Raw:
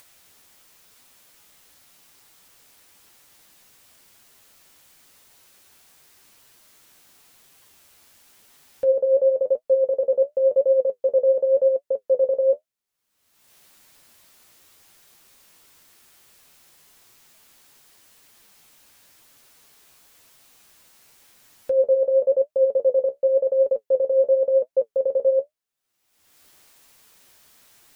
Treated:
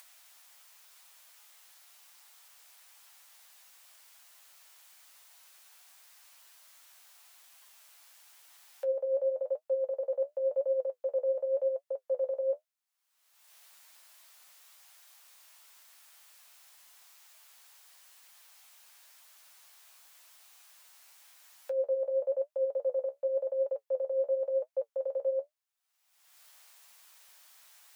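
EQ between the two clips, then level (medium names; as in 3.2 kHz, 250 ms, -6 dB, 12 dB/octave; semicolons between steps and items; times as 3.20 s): high-pass 670 Hz 24 dB/octave; -3.0 dB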